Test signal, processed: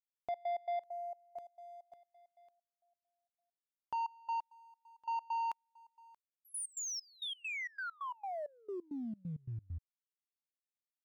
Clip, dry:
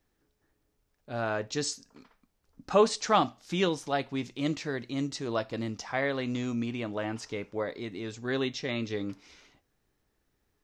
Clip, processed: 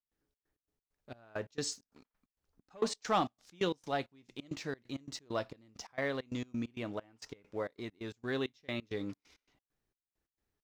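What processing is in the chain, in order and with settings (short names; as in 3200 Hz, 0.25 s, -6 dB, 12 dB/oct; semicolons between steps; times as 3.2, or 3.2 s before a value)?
sample leveller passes 1; step gate ".xx.x.x.xx..x" 133 bpm -24 dB; gain -8.5 dB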